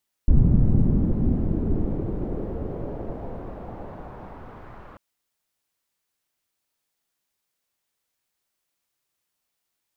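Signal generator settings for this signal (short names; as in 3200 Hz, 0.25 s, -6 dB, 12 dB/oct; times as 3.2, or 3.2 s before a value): swept filtered noise pink, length 4.69 s lowpass, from 160 Hz, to 1300 Hz, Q 1.4, exponential, gain ramp -31 dB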